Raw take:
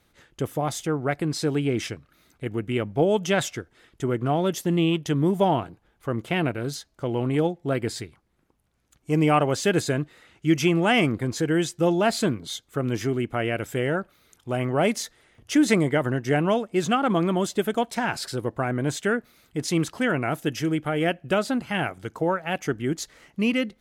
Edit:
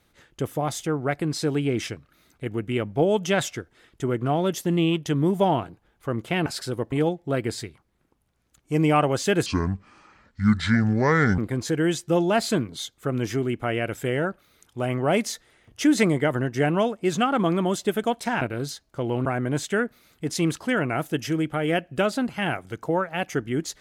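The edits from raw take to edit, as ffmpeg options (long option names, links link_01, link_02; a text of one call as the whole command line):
ffmpeg -i in.wav -filter_complex "[0:a]asplit=7[link_01][link_02][link_03][link_04][link_05][link_06][link_07];[link_01]atrim=end=6.462[link_08];[link_02]atrim=start=18.118:end=18.582[link_09];[link_03]atrim=start=7.298:end=9.844[link_10];[link_04]atrim=start=9.84:end=11.09,asetpts=PTS-STARTPTS,asetrate=28665,aresample=44100[link_11];[link_05]atrim=start=11.086:end=18.122[link_12];[link_06]atrim=start=6.458:end=7.302[link_13];[link_07]atrim=start=18.578[link_14];[link_08][link_09]acrossfade=duration=0.004:curve1=hsin:curve2=hsin[link_15];[link_15][link_10]acrossfade=duration=0.004:curve1=hsin:curve2=hsin[link_16];[link_16][link_11]acrossfade=duration=0.004:curve1=hsin:curve2=hsin[link_17];[link_17][link_12]acrossfade=duration=0.004:curve1=hsin:curve2=hsin[link_18];[link_18][link_13]acrossfade=duration=0.004:curve1=hsin:curve2=hsin[link_19];[link_19][link_14]acrossfade=duration=0.004:curve1=hsin:curve2=hsin" out.wav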